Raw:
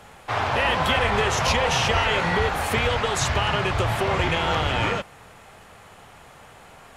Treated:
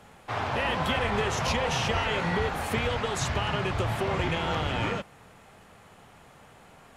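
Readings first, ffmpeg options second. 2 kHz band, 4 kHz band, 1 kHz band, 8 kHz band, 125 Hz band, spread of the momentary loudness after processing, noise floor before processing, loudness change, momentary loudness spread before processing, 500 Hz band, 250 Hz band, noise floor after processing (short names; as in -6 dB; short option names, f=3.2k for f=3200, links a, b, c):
-7.0 dB, -7.0 dB, -6.5 dB, -7.0 dB, -4.0 dB, 4 LU, -48 dBFS, -6.0 dB, 4 LU, -5.0 dB, -2.0 dB, -54 dBFS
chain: -af "equalizer=f=210:t=o:w=1.8:g=5.5,volume=-7dB"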